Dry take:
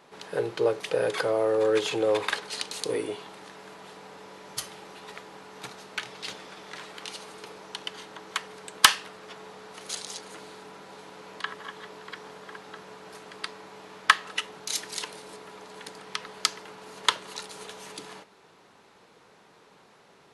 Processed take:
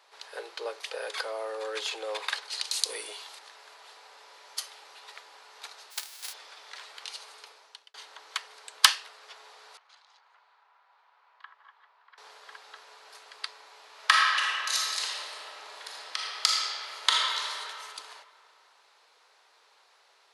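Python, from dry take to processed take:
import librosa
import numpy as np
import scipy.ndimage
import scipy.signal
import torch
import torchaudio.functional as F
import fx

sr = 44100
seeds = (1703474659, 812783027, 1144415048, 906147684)

y = fx.high_shelf(x, sr, hz=3500.0, db=10.5, at=(2.64, 3.39))
y = fx.envelope_flatten(y, sr, power=0.1, at=(5.9, 6.32), fade=0.02)
y = fx.ladder_bandpass(y, sr, hz=1200.0, resonance_pct=30, at=(9.77, 12.18))
y = fx.reverb_throw(y, sr, start_s=13.92, length_s=3.59, rt60_s=2.5, drr_db=-4.5)
y = fx.edit(y, sr, fx.fade_out_span(start_s=7.35, length_s=0.59), tone=tone)
y = scipy.signal.sosfilt(scipy.signal.bessel(4, 800.0, 'highpass', norm='mag', fs=sr, output='sos'), y)
y = fx.peak_eq(y, sr, hz=4500.0, db=5.5, octaves=0.69)
y = y * librosa.db_to_amplitude(-3.5)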